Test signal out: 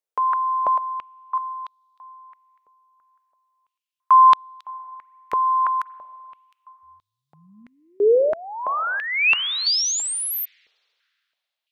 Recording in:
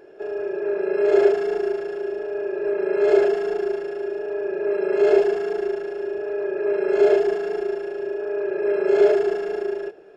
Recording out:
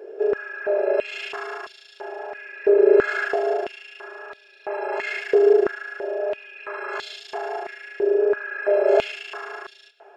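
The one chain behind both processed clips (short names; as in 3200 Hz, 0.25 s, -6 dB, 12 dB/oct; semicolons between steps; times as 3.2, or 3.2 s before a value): spring tank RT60 2.7 s, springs 38/42/47 ms, chirp 30 ms, DRR 17 dB; stepped high-pass 3 Hz 450–3700 Hz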